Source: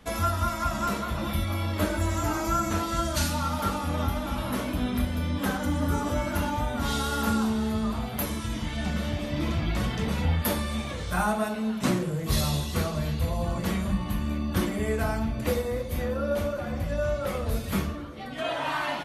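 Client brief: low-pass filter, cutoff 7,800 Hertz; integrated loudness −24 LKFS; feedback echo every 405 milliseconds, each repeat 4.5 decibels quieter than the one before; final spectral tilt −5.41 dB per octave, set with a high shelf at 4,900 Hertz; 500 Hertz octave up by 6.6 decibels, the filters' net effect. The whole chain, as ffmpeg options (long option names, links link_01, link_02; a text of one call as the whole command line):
ffmpeg -i in.wav -af "lowpass=7800,equalizer=frequency=500:width_type=o:gain=8,highshelf=frequency=4900:gain=3,aecho=1:1:405|810|1215|1620|2025|2430|2835|3240|3645:0.596|0.357|0.214|0.129|0.0772|0.0463|0.0278|0.0167|0.01" out.wav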